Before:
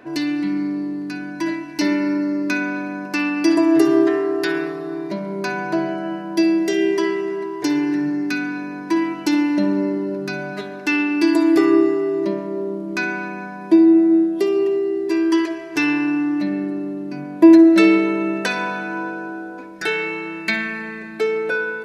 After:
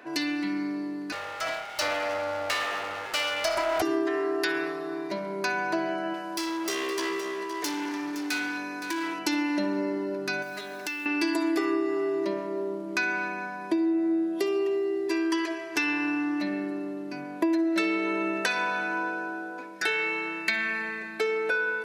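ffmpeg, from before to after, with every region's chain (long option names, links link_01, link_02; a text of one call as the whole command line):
ffmpeg -i in.wav -filter_complex "[0:a]asettb=1/sr,asplit=3[link_01][link_02][link_03];[link_01]atrim=end=1.124[link_04];[link_02]atrim=start=1.12:end=3.82,asetpts=PTS-STARTPTS,afade=type=in:duration=0.004:curve=qsin,afade=type=out:start_time=2.696:duration=0.004:curve=qsin,aeval=exprs='val(0)+0.02*sin(2*PI*1100*n/s)':channel_layout=same,aeval=exprs='abs(val(0))':channel_layout=same[link_05];[link_03]atrim=start=3.816[link_06];[link_04][link_05]acrossfade=duration=0.004:curve1=hsin:curve2=qsin[link_07];[link_07][link_06]acrossfade=duration=0.004:curve1=qsin:curve2=hsin,asettb=1/sr,asplit=3[link_08][link_09][link_10];[link_08]atrim=end=6.144[link_11];[link_09]atrim=start=6.14:end=9.19,asetpts=PTS-STARTPTS,afade=type=in:duration=0.004:curve=qsin,afade=type=out:start_time=3.046:duration=0.004:curve=qsin,bass=frequency=250:gain=-6,treble=frequency=4000:gain=7,volume=23.5dB,asoftclip=hard,volume=-23.5dB,aecho=1:1:516:0.266,atrim=end_sample=134505[link_12];[link_10]atrim=start=9.186[link_13];[link_11][link_12]acrossfade=duration=0.004:curve1=hsin:curve2=qsin[link_14];[link_14][link_13]acrossfade=duration=0.004:curve1=qsin:curve2=hsin,asettb=1/sr,asplit=3[link_15][link_16][link_17];[link_15]atrim=end=10.424[link_18];[link_16]atrim=start=10.42:end=11.06,asetpts=PTS-STARTPTS,afade=type=in:duration=0.004:curve=qsin,afade=type=out:start_time=0.636:duration=0.004:curve=qsin,acompressor=threshold=-29dB:ratio=10:attack=3.2:release=140:knee=1:detection=peak,highshelf=frequency=4200:gain=9,acrusher=bits=6:mode=log:mix=0:aa=0.000001[link_19];[link_17]atrim=start=11.056[link_20];[link_18][link_19]acrossfade=duration=0.004:curve1=hsin:curve2=qsin[link_21];[link_21][link_20]acrossfade=duration=0.004:curve1=qsin:curve2=hsin,highpass=frequency=670:poles=1,acompressor=threshold=-23dB:ratio=6" out.wav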